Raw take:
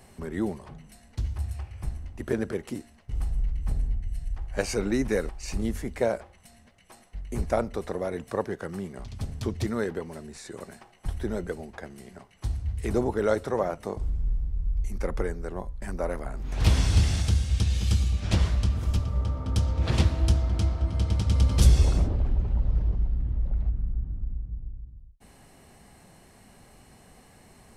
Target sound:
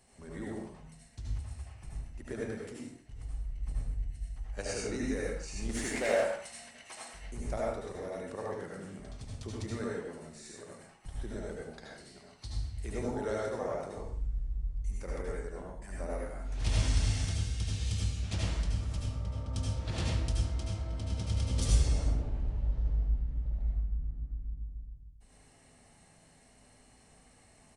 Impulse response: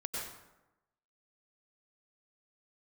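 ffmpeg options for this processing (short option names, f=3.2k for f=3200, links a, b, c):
-filter_complex "[0:a]asettb=1/sr,asplit=3[a][b][c];[a]atrim=end=2.434[d];[b]atrim=start=2.43:end=3.5,asetpts=PTS-STARTPTS,afade=t=in:d=0.004:c=qsin,afade=t=out:st=1.066:d=0.004:c=qsin,acompressor=threshold=-27dB:ratio=6[e];[c]atrim=start=3.496[f];[d][e]acrossfade=d=0.004:c1=hsin:c2=qsin[g];[g][f]acrossfade=d=0.004:c1=qsin:c2=hsin,asettb=1/sr,asplit=3[h][i][j];[h]atrim=end=11.714[k];[i]atrim=start=11.71:end=12.75,asetpts=PTS-STARTPTS,afade=t=in:d=0.004:c=qsin,afade=t=out:st=1.036:d=0.004:c=qsin,equalizer=f=4.4k:w=2.2:g=13.5[l];[j]atrim=start=12.746[m];[k][l]acrossfade=d=0.004:c1=hsin:c2=qsin[n];[n][m]acrossfade=d=0.004:c1=qsin:c2=hsin,aresample=22050,aresample=44100,highshelf=f=3.4k:g=8,asettb=1/sr,asplit=3[o][p][q];[o]atrim=end=5.694[r];[p]atrim=start=5.69:end=7.2,asetpts=PTS-STARTPTS,afade=t=in:d=0.004:c=qsin,afade=t=out:st=1.506:d=0.004:c=qsin,asplit=2[s][t];[t]highpass=f=720:p=1,volume=22dB,asoftclip=type=tanh:threshold=-11.5dB[u];[s][u]amix=inputs=2:normalize=0,lowpass=f=7.7k:p=1,volume=-6dB[v];[q]atrim=start=7.196[w];[r][v]acrossfade=d=0.004:c1=hsin:c2=qsin[x];[x][w]acrossfade=d=0.004:c1=qsin:c2=hsin[y];[1:a]atrim=start_sample=2205,afade=t=out:st=0.41:d=0.01,atrim=end_sample=18522,asetrate=57330,aresample=44100[z];[y][z]afir=irnorm=-1:irlink=0,volume=-8.5dB"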